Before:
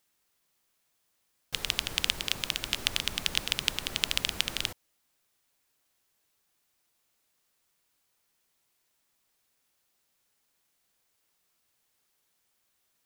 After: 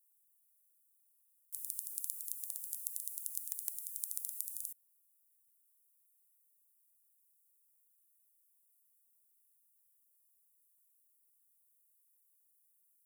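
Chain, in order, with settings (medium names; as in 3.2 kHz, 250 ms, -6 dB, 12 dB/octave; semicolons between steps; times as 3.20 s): inverse Chebyshev high-pass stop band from 1.9 kHz, stop band 80 dB; trim +4.5 dB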